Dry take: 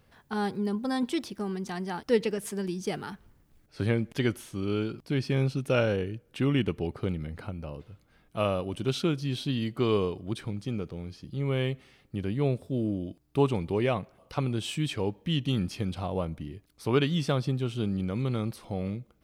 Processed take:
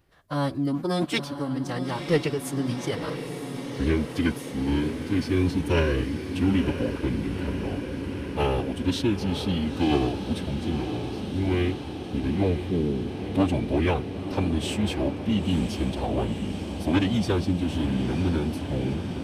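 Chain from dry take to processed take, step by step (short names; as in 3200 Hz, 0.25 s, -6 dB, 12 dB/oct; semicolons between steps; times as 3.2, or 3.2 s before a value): sample leveller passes 1; formant-preserving pitch shift -6.5 st; diffused feedback echo 0.964 s, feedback 76%, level -8.5 dB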